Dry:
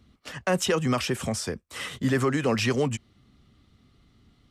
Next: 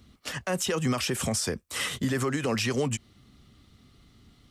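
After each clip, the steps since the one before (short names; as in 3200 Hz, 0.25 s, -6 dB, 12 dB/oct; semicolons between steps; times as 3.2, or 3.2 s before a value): high shelf 4700 Hz +7.5 dB; compressor 3:1, threshold -26 dBFS, peak gain reduction 6 dB; limiter -21 dBFS, peak gain reduction 7.5 dB; gain +2.5 dB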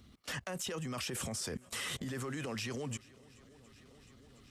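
swung echo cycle 0.716 s, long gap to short 1.5:1, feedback 51%, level -23 dB; transient shaper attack -7 dB, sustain -2 dB; level quantiser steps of 20 dB; gain +1 dB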